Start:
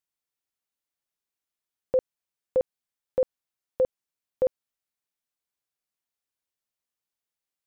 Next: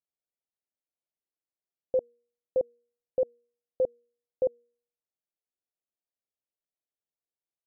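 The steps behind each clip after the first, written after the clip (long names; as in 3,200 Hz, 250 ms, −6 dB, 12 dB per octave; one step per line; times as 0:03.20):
Butterworth low-pass 720 Hz 36 dB per octave
low-shelf EQ 340 Hz −9 dB
hum removal 238.6 Hz, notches 2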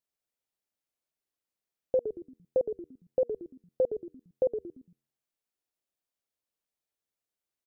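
downward compressor 2 to 1, threshold −28 dBFS, peak gain reduction 4 dB
echo with shifted repeats 114 ms, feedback 35%, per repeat −85 Hz, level −8.5 dB
level +3 dB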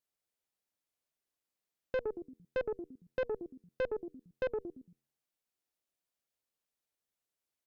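tube saturation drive 30 dB, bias 0.4
level +1 dB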